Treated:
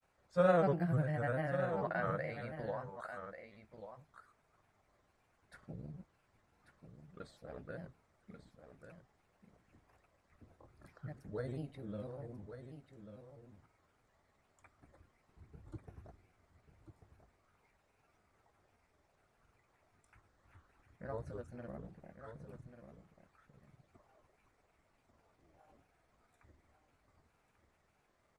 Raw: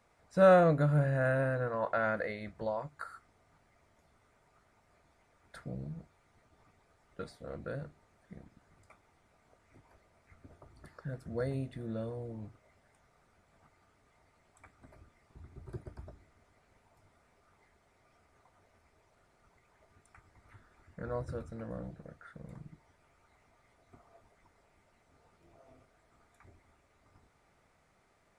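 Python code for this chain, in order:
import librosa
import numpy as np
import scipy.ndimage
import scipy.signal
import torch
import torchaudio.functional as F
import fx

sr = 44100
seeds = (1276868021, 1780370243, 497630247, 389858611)

y = fx.granulator(x, sr, seeds[0], grain_ms=100.0, per_s=20.0, spray_ms=29.0, spread_st=3)
y = y + 10.0 ** (-10.0 / 20.0) * np.pad(y, (int(1140 * sr / 1000.0), 0))[:len(y)]
y = y * librosa.db_to_amplitude(-5.0)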